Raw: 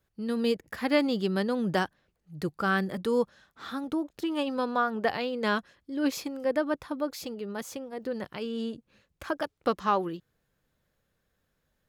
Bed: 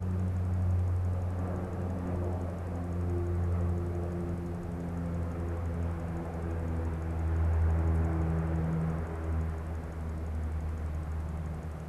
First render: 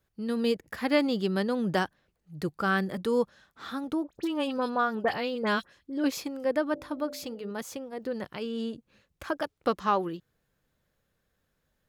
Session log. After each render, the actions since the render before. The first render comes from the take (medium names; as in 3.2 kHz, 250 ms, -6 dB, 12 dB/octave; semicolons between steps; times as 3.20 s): 4.04–6.04 s: phase dispersion highs, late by 46 ms, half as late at 2.3 kHz; 6.66–7.51 s: de-hum 53.3 Hz, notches 16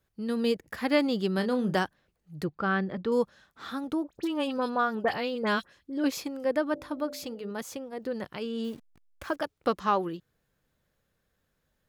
1.35–1.78 s: doubling 32 ms -9 dB; 2.44–3.12 s: distance through air 230 m; 8.64–9.36 s: send-on-delta sampling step -50.5 dBFS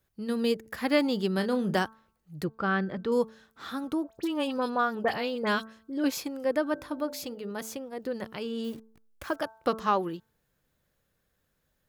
treble shelf 9.8 kHz +6 dB; de-hum 221.8 Hz, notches 7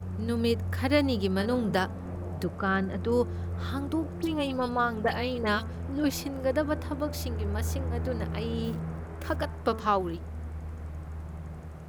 add bed -3.5 dB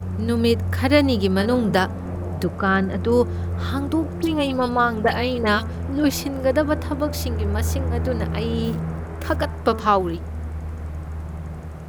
trim +8 dB